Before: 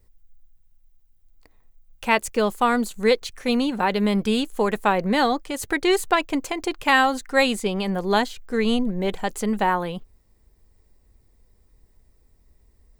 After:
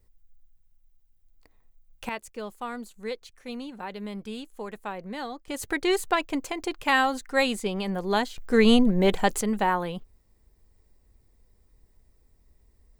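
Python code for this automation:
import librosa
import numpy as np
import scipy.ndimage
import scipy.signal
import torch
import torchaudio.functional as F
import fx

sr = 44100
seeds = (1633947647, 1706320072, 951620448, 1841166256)

y = fx.gain(x, sr, db=fx.steps((0.0, -4.5), (2.09, -15.0), (5.48, -4.5), (8.38, 3.5), (9.41, -3.0)))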